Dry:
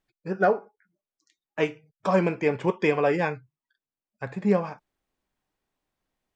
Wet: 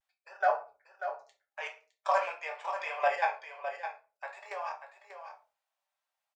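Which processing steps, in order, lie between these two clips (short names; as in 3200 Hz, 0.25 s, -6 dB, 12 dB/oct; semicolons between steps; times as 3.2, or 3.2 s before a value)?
steep high-pass 610 Hz 48 dB/oct; level quantiser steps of 13 dB; on a send: echo 0.599 s -9.5 dB; on the sum: shoebox room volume 180 m³, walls furnished, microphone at 1.2 m; vibrato 0.49 Hz 39 cents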